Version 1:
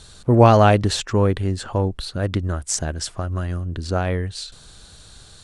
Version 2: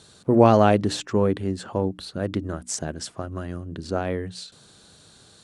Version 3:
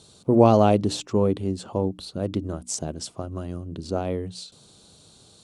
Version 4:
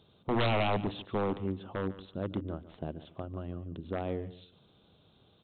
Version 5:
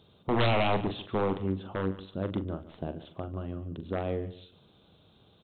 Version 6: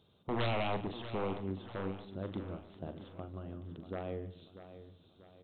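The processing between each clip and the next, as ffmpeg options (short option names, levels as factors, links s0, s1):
-af "highpass=200,lowshelf=f=420:g=10.5,bandreject=f=60:t=h:w=6,bandreject=f=120:t=h:w=6,bandreject=f=180:t=h:w=6,bandreject=f=240:t=h:w=6,bandreject=f=300:t=h:w=6,volume=0.501"
-af "equalizer=f=1700:t=o:w=0.67:g=-13"
-af "aeval=exprs='0.841*(cos(1*acos(clip(val(0)/0.841,-1,1)))-cos(1*PI/2))+0.266*(cos(2*acos(clip(val(0)/0.841,-1,1)))-cos(2*PI/2))':c=same,aresample=8000,aeval=exprs='0.178*(abs(mod(val(0)/0.178+3,4)-2)-1)':c=same,aresample=44100,aecho=1:1:145|290:0.158|0.0365,volume=0.422"
-filter_complex "[0:a]asplit=2[s0][s1];[s1]adelay=42,volume=0.299[s2];[s0][s2]amix=inputs=2:normalize=0,volume=1.33"
-af "aecho=1:1:640|1280|1920|2560:0.237|0.102|0.0438|0.0189,volume=0.398"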